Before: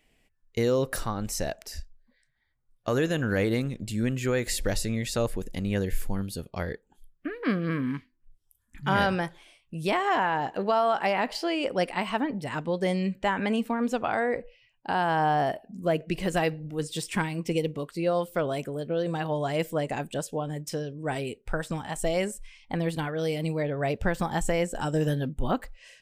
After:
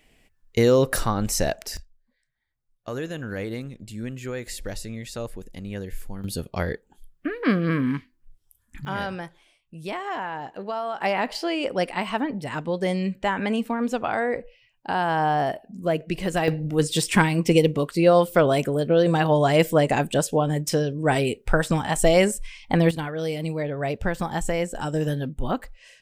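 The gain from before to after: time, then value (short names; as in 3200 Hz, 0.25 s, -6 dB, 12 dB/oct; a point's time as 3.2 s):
+7 dB
from 1.77 s -5.5 dB
from 6.24 s +5.5 dB
from 8.85 s -5.5 dB
from 11.01 s +2 dB
from 16.48 s +9.5 dB
from 22.91 s +1 dB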